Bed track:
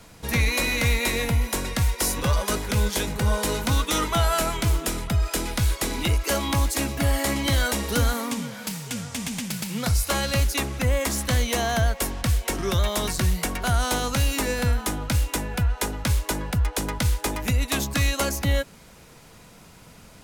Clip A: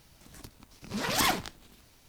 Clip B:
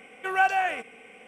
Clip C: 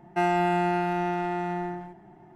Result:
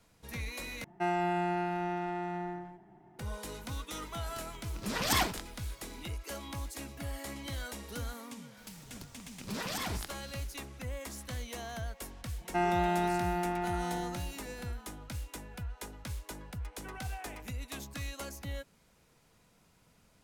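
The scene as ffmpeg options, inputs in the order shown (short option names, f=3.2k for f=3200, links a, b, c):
-filter_complex "[3:a]asplit=2[a][b];[1:a]asplit=2[c][d];[0:a]volume=-17.5dB[e];[d]acompressor=threshold=-31dB:ratio=6:attack=3.2:release=140:knee=1:detection=peak[f];[2:a]alimiter=limit=-20.5dB:level=0:latency=1:release=71[g];[e]asplit=2[h][i];[h]atrim=end=0.844[j];[a]atrim=end=2.35,asetpts=PTS-STARTPTS,volume=-7dB[k];[i]atrim=start=3.186[l];[c]atrim=end=2.08,asetpts=PTS-STARTPTS,volume=-2.5dB,afade=t=in:d=0.004:c=hsin,afade=t=out:st=2.076:d=0.004:c=hsin,adelay=3920[m];[f]atrim=end=2.08,asetpts=PTS-STARTPTS,volume=-2dB,afade=t=in:d=0.004:c=hsin,afade=t=out:st=2.076:d=0.004:c=hsin,adelay=8570[n];[b]atrim=end=2.35,asetpts=PTS-STARTPTS,volume=-5.5dB,afade=t=in:d=0.004:c=hsin,afade=t=out:st=2.346:d=0.004:c=hsin,adelay=12380[o];[g]atrim=end=1.27,asetpts=PTS-STARTPTS,volume=-18dB,afade=t=in:d=0.004:c=hsin,afade=t=out:st=1.266:d=0.004:c=hsin,adelay=16600[p];[j][k]acrossfade=d=0.004:c1=hsin:c2=hsin[q];[q][l]acrossfade=d=0.004:c1=hsin:c2=hsin[r];[r][m][n][o][p]amix=inputs=5:normalize=0"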